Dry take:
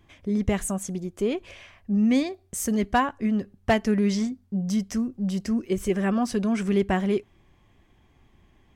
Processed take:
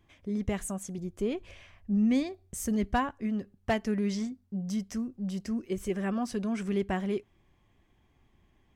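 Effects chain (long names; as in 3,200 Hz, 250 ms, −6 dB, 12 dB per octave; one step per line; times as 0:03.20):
0:00.98–0:03.12: low-shelf EQ 140 Hz +10 dB
level −7 dB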